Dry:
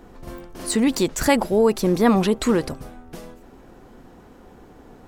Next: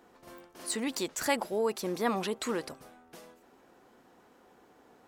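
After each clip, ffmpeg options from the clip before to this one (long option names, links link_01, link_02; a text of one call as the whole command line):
ffmpeg -i in.wav -af "highpass=frequency=570:poles=1,volume=-8dB" out.wav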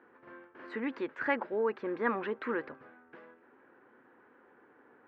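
ffmpeg -i in.wav -af "highpass=140,equalizer=frequency=180:width_type=q:width=4:gain=-10,equalizer=frequency=700:width_type=q:width=4:gain=-9,equalizer=frequency=1600:width_type=q:width=4:gain=7,lowpass=frequency=2200:width=0.5412,lowpass=frequency=2200:width=1.3066" out.wav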